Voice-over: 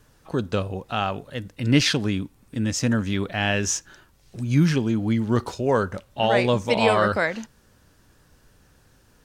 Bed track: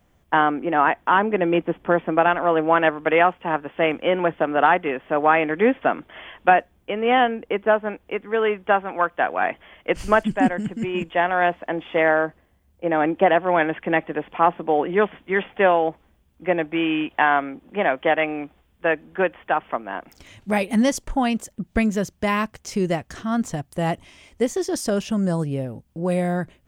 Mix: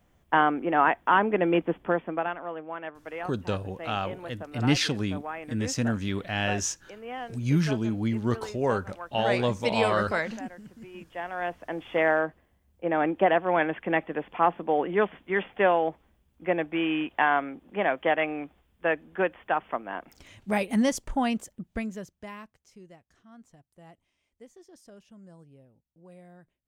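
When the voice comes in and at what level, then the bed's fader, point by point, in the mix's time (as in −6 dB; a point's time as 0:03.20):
2.95 s, −5.0 dB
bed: 0:01.76 −3.5 dB
0:02.66 −19.5 dB
0:10.91 −19.5 dB
0:11.93 −5 dB
0:21.33 −5 dB
0:22.88 −28.5 dB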